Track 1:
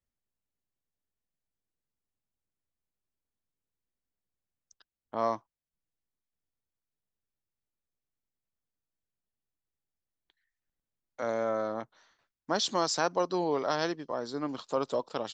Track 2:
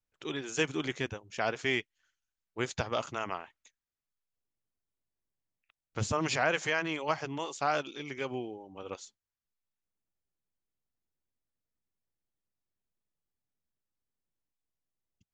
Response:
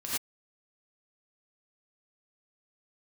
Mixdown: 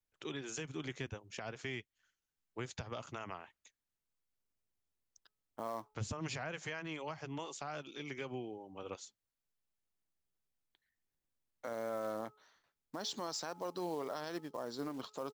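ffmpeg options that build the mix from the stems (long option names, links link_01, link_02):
-filter_complex "[0:a]bandreject=frequency=426.9:width_type=h:width=4,bandreject=frequency=853.8:width_type=h:width=4,bandreject=frequency=1280.7:width_type=h:width=4,acrusher=bits=5:mode=log:mix=0:aa=0.000001,adelay=450,volume=-4.5dB[link_01];[1:a]acrossover=split=170[link_02][link_03];[link_03]acompressor=threshold=-37dB:ratio=5[link_04];[link_02][link_04]amix=inputs=2:normalize=0,volume=-2.5dB[link_05];[link_01][link_05]amix=inputs=2:normalize=0,alimiter=level_in=6dB:limit=-24dB:level=0:latency=1:release=104,volume=-6dB"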